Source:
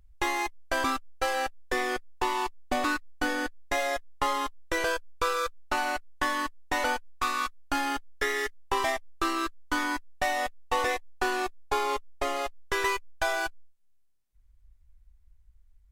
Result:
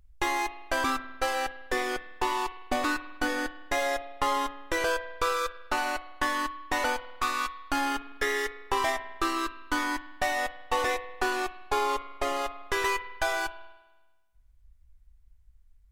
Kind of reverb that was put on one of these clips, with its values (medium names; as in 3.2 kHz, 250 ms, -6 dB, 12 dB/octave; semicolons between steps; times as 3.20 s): spring tank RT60 1.2 s, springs 50 ms, chirp 60 ms, DRR 12 dB